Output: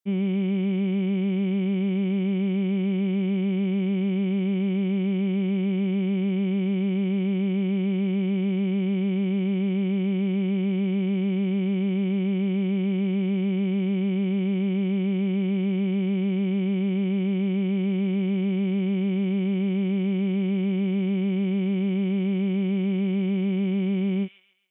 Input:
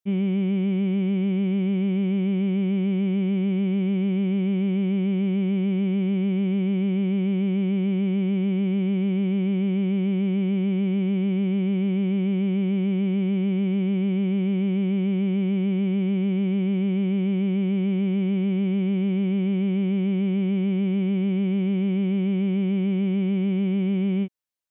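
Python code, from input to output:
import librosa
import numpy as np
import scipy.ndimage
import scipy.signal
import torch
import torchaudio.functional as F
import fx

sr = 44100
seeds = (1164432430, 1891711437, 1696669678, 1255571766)

p1 = scipy.signal.sosfilt(scipy.signal.butter(2, 150.0, 'highpass', fs=sr, output='sos'), x)
y = p1 + fx.echo_wet_highpass(p1, sr, ms=135, feedback_pct=37, hz=2900.0, wet_db=-3.5, dry=0)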